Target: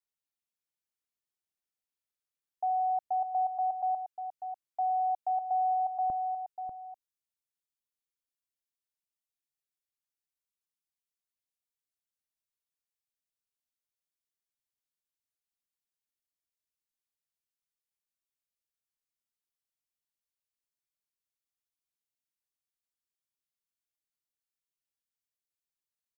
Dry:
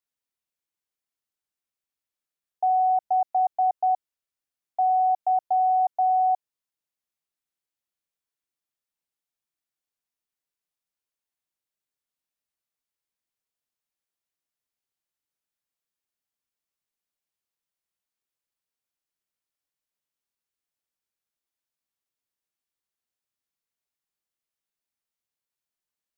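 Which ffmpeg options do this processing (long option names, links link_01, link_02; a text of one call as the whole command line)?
ffmpeg -i in.wav -af "asetnsamples=nb_out_samples=441:pad=0,asendcmd='6.1 equalizer g -10',equalizer=frequency=640:width=0.33:gain=-3,aecho=1:1:593:0.376,volume=-5dB" out.wav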